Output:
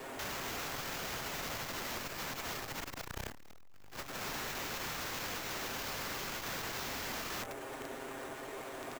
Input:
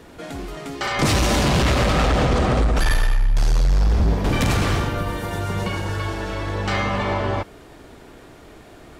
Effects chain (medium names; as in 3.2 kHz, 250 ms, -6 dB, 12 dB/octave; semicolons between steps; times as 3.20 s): comb filter that takes the minimum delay 7.5 ms; tone controls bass -14 dB, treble -6 dB; delay 99 ms -17 dB; compression 10:1, threshold -31 dBFS, peak gain reduction 12.5 dB; sample-rate reducer 9.6 kHz, jitter 0%; integer overflow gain 37.5 dB; dynamic bell 3.6 kHz, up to -5 dB, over -55 dBFS, Q 1; spring tank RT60 1.1 s, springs 39 ms, DRR 19.5 dB; transformer saturation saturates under 87 Hz; trim +4.5 dB